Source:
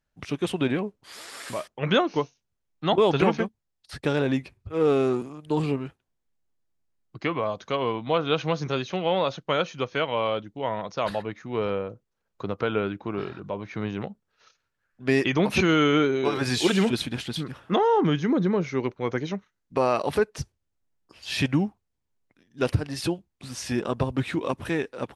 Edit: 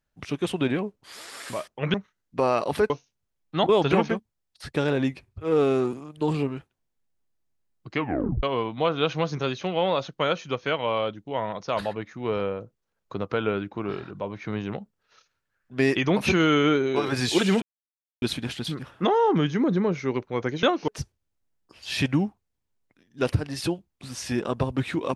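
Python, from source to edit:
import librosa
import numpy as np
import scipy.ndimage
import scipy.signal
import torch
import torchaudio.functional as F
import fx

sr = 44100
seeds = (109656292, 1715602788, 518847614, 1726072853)

y = fx.edit(x, sr, fx.swap(start_s=1.94, length_s=0.25, other_s=19.32, other_length_s=0.96),
    fx.tape_stop(start_s=7.27, length_s=0.45),
    fx.insert_silence(at_s=16.91, length_s=0.6), tone=tone)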